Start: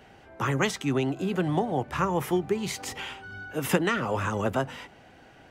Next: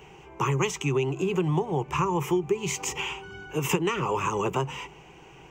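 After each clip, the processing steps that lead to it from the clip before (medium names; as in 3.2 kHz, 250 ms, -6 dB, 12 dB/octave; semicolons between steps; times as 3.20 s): rippled EQ curve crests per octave 0.73, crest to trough 14 dB; compression 2.5:1, threshold -26 dBFS, peak gain reduction 8.5 dB; trim +2 dB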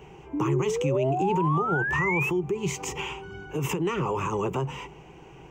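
tilt shelf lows +4 dB; peak limiter -19 dBFS, peak gain reduction 9.5 dB; painted sound rise, 0.33–2.30 s, 280–2700 Hz -28 dBFS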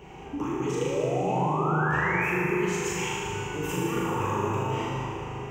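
compression 2.5:1, threshold -35 dBFS, peak gain reduction 10 dB; flutter echo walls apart 6.7 m, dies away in 1 s; plate-style reverb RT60 3.9 s, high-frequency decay 0.6×, DRR -2 dB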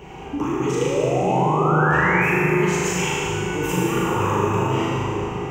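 two-band feedback delay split 620 Hz, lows 789 ms, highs 97 ms, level -8.5 dB; trim +6.5 dB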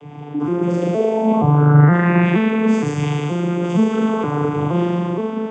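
vocoder on a broken chord minor triad, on D3, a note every 470 ms; trim +5 dB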